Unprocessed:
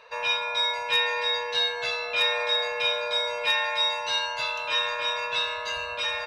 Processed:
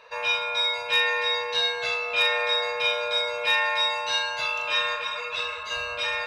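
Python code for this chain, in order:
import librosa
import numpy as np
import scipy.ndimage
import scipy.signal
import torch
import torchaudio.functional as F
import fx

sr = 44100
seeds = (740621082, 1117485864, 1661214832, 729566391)

p1 = fx.doubler(x, sr, ms=39.0, db=-5.0)
p2 = p1 + fx.echo_single(p1, sr, ms=189, db=-21.5, dry=0)
y = fx.ensemble(p2, sr, at=(4.95, 5.7), fade=0.02)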